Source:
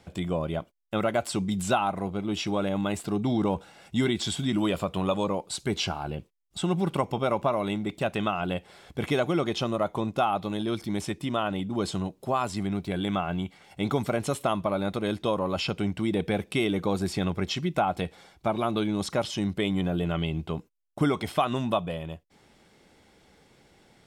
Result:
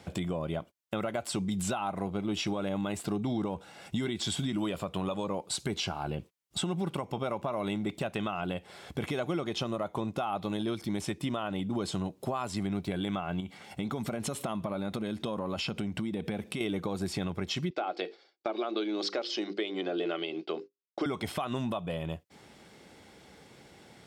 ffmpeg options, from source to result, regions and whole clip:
-filter_complex "[0:a]asettb=1/sr,asplit=3[a][b][c];[a]atrim=end=13.404[d];[b]atrim=start=13.4:end=16.61,asetpts=PTS-STARTPTS,afade=t=in:d=0.004:c=qsin,afade=t=out:st=3.206:d=0.004:c=qsin,equalizer=f=220:t=o:w=0.27:g=6.5,acompressor=threshold=-33dB:ratio=5:attack=3.2:release=140:knee=1:detection=peak[e];[c]atrim=start=16.606[f];[d][e]acrossfade=d=0.004:c1=hsin:c2=qsin[g];[g][f]acrossfade=d=0.004:c1=qsin:c2=hsin,asettb=1/sr,asplit=3[h][i][j];[h]atrim=end=17.704[k];[i]atrim=start=17.7:end=21.06,asetpts=PTS-STARTPTS,afade=t=in:d=0.004:c=qsin,afade=t=out:st=3.356:d=0.004:c=qsin,highpass=f=320:w=0.5412,highpass=f=320:w=1.3066,equalizer=f=350:t=q:w=4:g=7,equalizer=f=960:t=q:w=4:g=-8,equalizer=f=4.7k:t=q:w=4:g=10,lowpass=f=5.5k:w=0.5412,lowpass=f=5.5k:w=1.3066,bandreject=f=50:t=h:w=6,bandreject=f=100:t=h:w=6,bandreject=f=150:t=h:w=6,bandreject=f=200:t=h:w=6,bandreject=f=250:t=h:w=6,bandreject=f=300:t=h:w=6,bandreject=f=350:t=h:w=6,bandreject=f=400:t=h:w=6,bandreject=f=450:t=h:w=6,bandreject=f=500:t=h:w=6,agate=range=-33dB:threshold=-43dB:ratio=3:release=100:detection=peak[l];[j]atrim=start=21.056[m];[k][l]acrossfade=d=0.004:c1=hsin:c2=qsin[n];[n][m]acrossfade=d=0.004:c1=qsin:c2=hsin,highpass=69,alimiter=limit=-22dB:level=0:latency=1:release=406,acompressor=threshold=-35dB:ratio=2.5,volume=4.5dB"

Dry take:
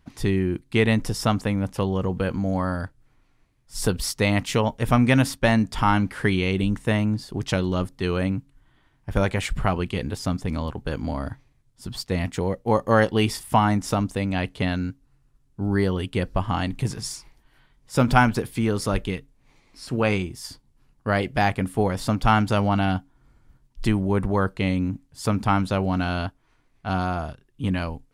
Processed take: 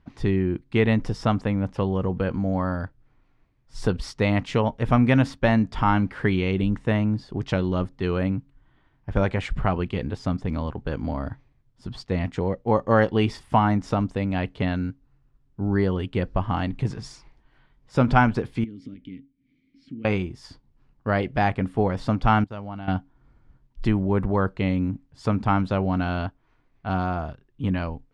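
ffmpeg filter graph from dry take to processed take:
-filter_complex "[0:a]asettb=1/sr,asplit=3[a][b][c];[a]atrim=end=18.644[d];[b]atrim=start=18.64:end=20.05,asetpts=PTS-STARTPTS,afade=t=in:d=0.004:c=qsin,afade=t=out:st=1.406:d=0.004:c=qsin,bass=f=250:g=15,treble=f=4k:g=10,acompressor=threshold=-18dB:ratio=8:attack=3.2:release=140:knee=1:detection=peak,asplit=3[e][f][g];[e]bandpass=f=270:t=q:w=8,volume=0dB[h];[f]bandpass=f=2.29k:t=q:w=8,volume=-6dB[i];[g]bandpass=f=3.01k:t=q:w=8,volume=-9dB[j];[h][i][j]amix=inputs=3:normalize=0[k];[c]atrim=start=20.046[l];[d][k]acrossfade=d=0.004:c1=hsin:c2=qsin[m];[m][l]acrossfade=d=0.004:c1=qsin:c2=hsin,asettb=1/sr,asplit=3[n][o][p];[n]atrim=end=22.444[q];[o]atrim=start=22.44:end=22.88,asetpts=PTS-STARTPTS,afade=t=in:d=0.004:c=qsin,afade=t=out:st=0.436:d=0.004:c=qsin,agate=range=-33dB:threshold=-18dB:ratio=3:release=100:detection=peak,acompressor=threshold=-38dB:ratio=2:attack=3.2:release=140:knee=1:detection=peak[r];[p]atrim=start=22.876[s];[q][r]acrossfade=d=0.004:c1=hsin:c2=qsin[t];[t][s]acrossfade=d=0.004:c1=qsin:c2=hsin,lowpass=5.7k,highshelf=f=3.1k:g=-9.5"

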